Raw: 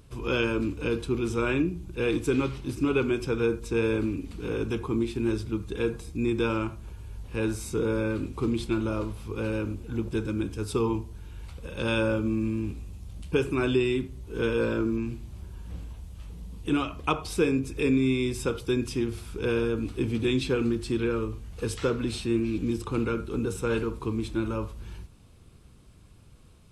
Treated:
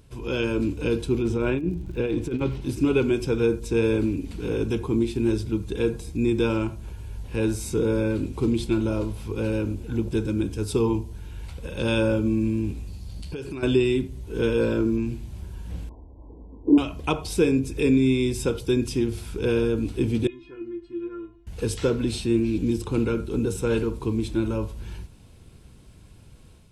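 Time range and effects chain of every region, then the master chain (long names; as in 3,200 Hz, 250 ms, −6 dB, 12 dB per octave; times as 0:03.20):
0:01.21–0:02.60: low-pass filter 2,200 Hz 6 dB per octave + compressor whose output falls as the input rises −27 dBFS, ratio −0.5 + surface crackle 56 per second −46 dBFS
0:12.87–0:13.63: parametric band 4,500 Hz +13.5 dB 0.23 octaves + downward compressor 5 to 1, threshold −35 dBFS
0:15.89–0:16.78: linear-phase brick-wall low-pass 1,100 Hz + low shelf with overshoot 220 Hz −8 dB, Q 3
0:20.27–0:21.47: low-pass filter 2,000 Hz + stiff-string resonator 340 Hz, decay 0.28 s, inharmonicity 0.002
whole clip: notch filter 1,200 Hz, Q 7; dynamic equaliser 1,600 Hz, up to −5 dB, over −46 dBFS, Q 0.75; automatic gain control gain up to 4.5 dB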